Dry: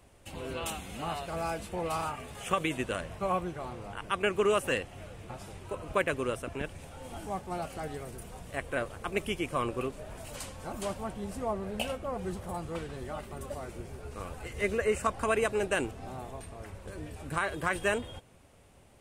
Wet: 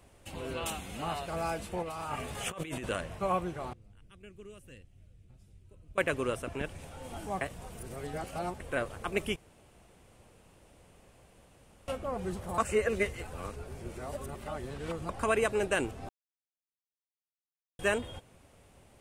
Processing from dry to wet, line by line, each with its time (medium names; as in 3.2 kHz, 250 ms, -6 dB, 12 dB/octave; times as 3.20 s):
1.82–2.90 s: compressor with a negative ratio -38 dBFS
3.73–5.98 s: amplifier tone stack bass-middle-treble 10-0-1
7.41–8.60 s: reverse
9.36–11.88 s: room tone
12.58–15.09 s: reverse
16.09–17.79 s: mute